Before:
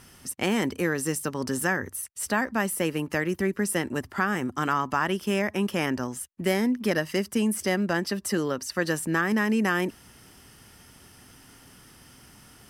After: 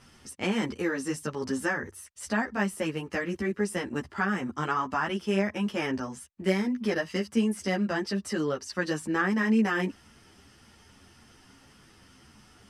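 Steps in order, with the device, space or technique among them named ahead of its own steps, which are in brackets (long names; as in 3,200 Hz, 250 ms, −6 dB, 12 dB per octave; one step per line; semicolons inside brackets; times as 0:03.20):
string-machine ensemble chorus (string-ensemble chorus; low-pass filter 6,900 Hz 12 dB per octave)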